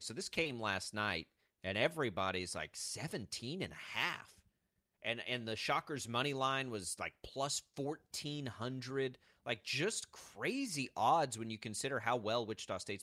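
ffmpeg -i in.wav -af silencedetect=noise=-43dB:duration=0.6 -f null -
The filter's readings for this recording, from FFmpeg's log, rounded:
silence_start: 4.22
silence_end: 5.05 | silence_duration: 0.83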